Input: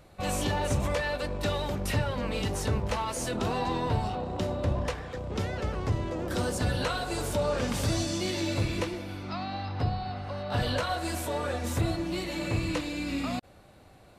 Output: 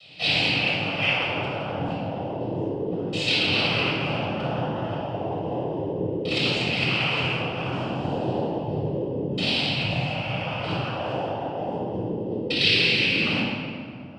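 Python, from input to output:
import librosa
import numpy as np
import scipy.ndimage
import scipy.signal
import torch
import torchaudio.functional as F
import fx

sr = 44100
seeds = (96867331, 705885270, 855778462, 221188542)

y = fx.filter_lfo_lowpass(x, sr, shape='saw_down', hz=0.32, low_hz=310.0, high_hz=2900.0, q=4.4)
y = fx.over_compress(y, sr, threshold_db=-28.0, ratio=-0.5)
y = fx.noise_vocoder(y, sr, seeds[0], bands=8)
y = fx.high_shelf_res(y, sr, hz=2200.0, db=10.0, q=3.0)
y = fx.room_shoebox(y, sr, seeds[1], volume_m3=3400.0, walls='mixed', distance_m=6.4)
y = y * librosa.db_to_amplitude(-7.0)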